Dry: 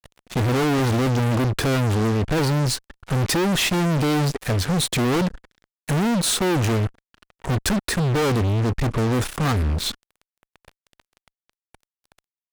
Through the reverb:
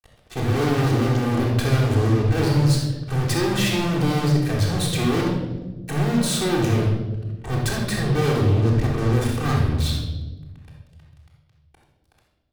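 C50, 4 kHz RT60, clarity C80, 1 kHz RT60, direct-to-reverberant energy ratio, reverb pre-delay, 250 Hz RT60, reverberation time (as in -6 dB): 1.5 dB, 0.85 s, 5.0 dB, 0.95 s, -4.0 dB, 3 ms, 2.0 s, 1.2 s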